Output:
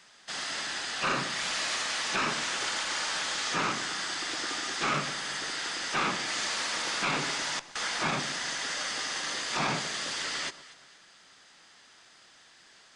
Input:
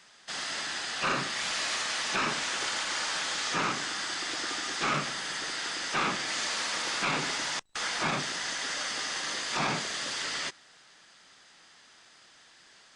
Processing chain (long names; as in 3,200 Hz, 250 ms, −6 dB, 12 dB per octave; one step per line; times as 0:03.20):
delay that swaps between a low-pass and a high-pass 119 ms, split 1,100 Hz, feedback 59%, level −13.5 dB